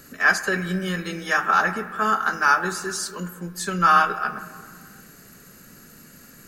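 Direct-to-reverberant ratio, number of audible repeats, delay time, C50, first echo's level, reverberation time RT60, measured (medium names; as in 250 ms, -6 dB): 11.5 dB, no echo, no echo, 12.0 dB, no echo, 2.1 s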